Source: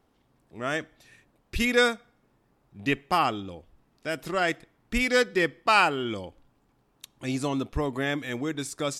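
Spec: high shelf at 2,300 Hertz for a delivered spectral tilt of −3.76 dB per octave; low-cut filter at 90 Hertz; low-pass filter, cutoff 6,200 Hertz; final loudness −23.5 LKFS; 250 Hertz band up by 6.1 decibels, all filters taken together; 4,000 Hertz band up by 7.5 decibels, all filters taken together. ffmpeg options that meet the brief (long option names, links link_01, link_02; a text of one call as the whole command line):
ffmpeg -i in.wav -af "highpass=90,lowpass=6200,equalizer=frequency=250:width_type=o:gain=7,highshelf=frequency=2300:gain=7,equalizer=frequency=4000:width_type=o:gain=4,volume=-0.5dB" out.wav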